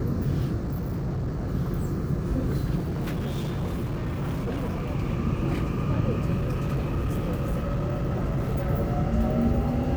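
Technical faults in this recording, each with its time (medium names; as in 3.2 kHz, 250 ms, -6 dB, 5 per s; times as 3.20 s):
0.56–1.51 s: clipped -25.5 dBFS
2.76–4.89 s: clipped -25 dBFS
6.35–8.70 s: clipped -22.5 dBFS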